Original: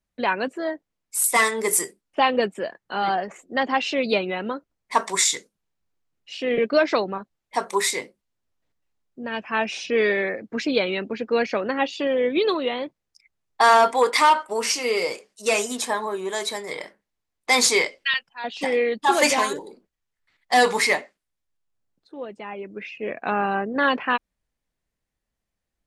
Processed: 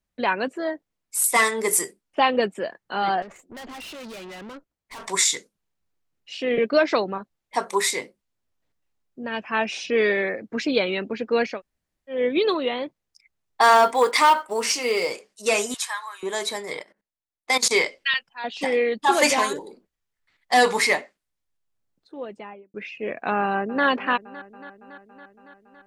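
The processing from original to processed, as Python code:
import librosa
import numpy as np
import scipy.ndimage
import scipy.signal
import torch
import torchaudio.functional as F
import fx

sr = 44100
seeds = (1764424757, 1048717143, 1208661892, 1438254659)

y = fx.tube_stage(x, sr, drive_db=37.0, bias=0.65, at=(3.22, 5.08))
y = fx.quant_float(y, sr, bits=4, at=(13.62, 15.12))
y = fx.highpass(y, sr, hz=1100.0, slope=24, at=(15.74, 16.23))
y = fx.level_steps(y, sr, step_db=19, at=(16.79, 17.71))
y = fx.studio_fade_out(y, sr, start_s=22.32, length_s=0.42)
y = fx.echo_throw(y, sr, start_s=23.41, length_s=0.44, ms=280, feedback_pct=75, wet_db=-15.5)
y = fx.edit(y, sr, fx.room_tone_fill(start_s=11.54, length_s=0.61, crossfade_s=0.16), tone=tone)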